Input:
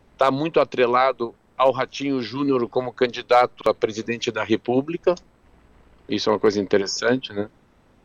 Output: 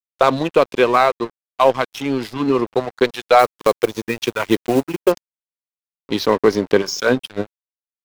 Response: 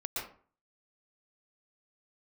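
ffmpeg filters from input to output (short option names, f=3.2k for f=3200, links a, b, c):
-filter_complex "[0:a]asettb=1/sr,asplit=3[a][b][c];[a]atrim=end=3.394[d];[b]atrim=start=3.39:end=5.12,asetpts=PTS-STARTPTS,afade=t=in:d=0.004:c=qsin,afade=t=out:st=1.726:d=0.004:c=qsin,acrusher=bits=5:mode=log:mix=0:aa=0.000001[e];[c]atrim=start=5.116[f];[d][e]acrossfade=d=0.004:c1=hsin:c2=qsin[g];[g][f]acrossfade=d=0.004:c1=qsin:c2=hsin,aeval=exprs='sgn(val(0))*max(abs(val(0))-0.02,0)':c=same,volume=4.5dB"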